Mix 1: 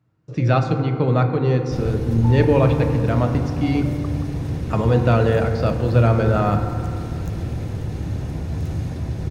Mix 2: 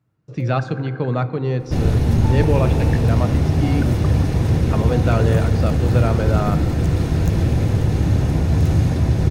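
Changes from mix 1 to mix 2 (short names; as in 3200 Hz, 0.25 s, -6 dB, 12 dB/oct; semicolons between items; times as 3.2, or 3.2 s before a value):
speech: send -8.5 dB; first sound: remove polynomial smoothing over 65 samples; second sound +9.0 dB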